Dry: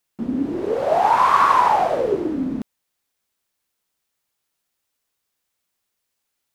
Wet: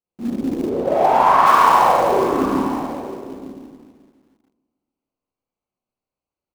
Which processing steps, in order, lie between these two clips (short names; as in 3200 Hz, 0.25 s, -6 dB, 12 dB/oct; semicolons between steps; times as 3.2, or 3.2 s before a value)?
Wiener smoothing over 25 samples; de-hum 103.6 Hz, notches 39; on a send: echo 0.905 s -14.5 dB; on the sum: Schroeder reverb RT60 1.8 s, combs from 30 ms, DRR -9 dB; in parallel at -6.5 dB: companded quantiser 4-bit; 0.69–1.46 on the sum: high shelf 4100 Hz -10.5 dB; gain -8 dB